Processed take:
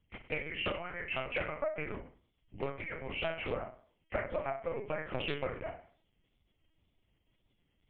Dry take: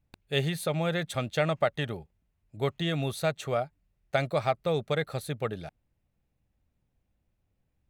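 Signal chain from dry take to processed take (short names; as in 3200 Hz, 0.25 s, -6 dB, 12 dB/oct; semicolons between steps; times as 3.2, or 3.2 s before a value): nonlinear frequency compression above 1900 Hz 4:1; compressor 10:1, threshold -35 dBFS, peak gain reduction 15.5 dB; wow and flutter 70 cents; harmonic-percussive split harmonic -16 dB; flutter echo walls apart 5.6 m, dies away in 0.45 s; LPC vocoder at 8 kHz pitch kept; Doppler distortion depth 0.37 ms; gain +4 dB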